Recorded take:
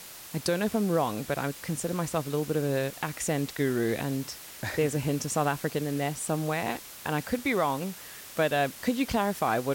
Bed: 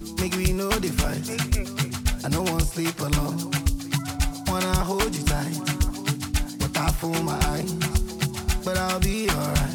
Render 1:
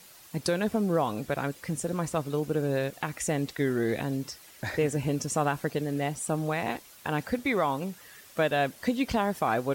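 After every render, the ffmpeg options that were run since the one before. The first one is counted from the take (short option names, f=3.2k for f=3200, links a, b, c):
-af "afftdn=nr=9:nf=-45"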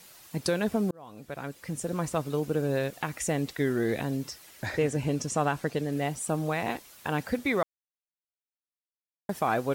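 -filter_complex "[0:a]asettb=1/sr,asplit=3[a][b][c];[a]atrim=end=4.664[d];[b]atrim=start=4.66:end=5.92,asetpts=PTS-STARTPTS,afade=t=in:d=0.004:c=qsin,afade=t=out:st=1.256:d=0.004:c=qsin,acrossover=split=9900[e][f];[f]acompressor=threshold=-59dB:ratio=4:attack=1:release=60[g];[e][g]amix=inputs=2:normalize=0[h];[c]atrim=start=5.916[i];[d][h]acrossfade=d=0.004:c1=hsin:c2=qsin[j];[j][i]acrossfade=d=0.004:c1=qsin:c2=hsin,asplit=4[k][l][m][n];[k]atrim=end=0.91,asetpts=PTS-STARTPTS,afade=t=out:st=0.906:d=0.004:c=hsin[o];[l]atrim=start=0.91:end=7.63,asetpts=PTS-STARTPTS,afade=t=in:d=1.1,afade=t=out:st=6.716:d=0.004:c=hsin[p];[m]atrim=start=7.63:end=9.29,asetpts=PTS-STARTPTS,volume=0[q];[n]atrim=start=9.29,asetpts=PTS-STARTPTS,afade=t=in:d=0.004:c=hsin[r];[o][p][q][r]concat=n=4:v=0:a=1"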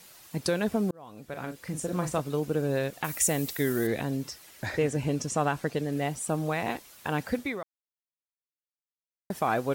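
-filter_complex "[0:a]asettb=1/sr,asplit=3[a][b][c];[a]atrim=end=1.294[d];[b]atrim=start=1.29:end=2.2,asetpts=PTS-STARTPTS,afade=t=in:d=0.004:c=qsin,afade=t=out:st=0.906:d=0.004:c=qsin,asplit=2[e][f];[f]adelay=39,volume=-7dB[g];[e][g]amix=inputs=2:normalize=0,atrim=end_sample=40131[h];[c]atrim=start=2.196[i];[d][h]acrossfade=d=0.004:c1=hsin:c2=qsin[j];[j][i]acrossfade=d=0.004:c1=qsin:c2=hsin,asettb=1/sr,asplit=3[k][l][m];[k]atrim=end=3.044[n];[l]atrim=start=3.04:end=3.87,asetpts=PTS-STARTPTS,afade=t=in:d=0.004:c=qsin,afade=t=out:st=0.826:d=0.004:c=qsin,aemphasis=mode=production:type=50fm[o];[m]atrim=start=3.866[p];[n][o]acrossfade=d=0.004:c1=hsin:c2=qsin[q];[q][p]acrossfade=d=0.004:c1=qsin:c2=hsin,asplit=2[r][s];[r]atrim=end=9.3,asetpts=PTS-STARTPTS,afade=t=out:st=7.4:d=1.9:c=exp[t];[s]atrim=start=9.3,asetpts=PTS-STARTPTS,afade=t=in:d=0.004:c=hsin[u];[t][u]concat=n=2:v=0:a=1"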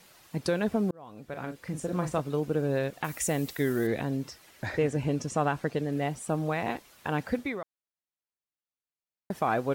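-af "highshelf=f=4.6k:g=-8.5"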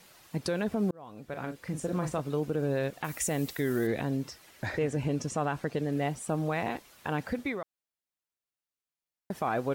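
-af "alimiter=limit=-20dB:level=0:latency=1:release=66"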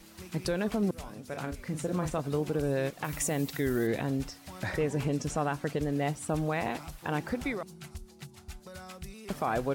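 -filter_complex "[1:a]volume=-21dB[a];[0:a][a]amix=inputs=2:normalize=0"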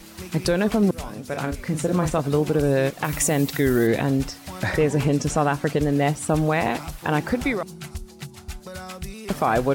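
-af "volume=9.5dB"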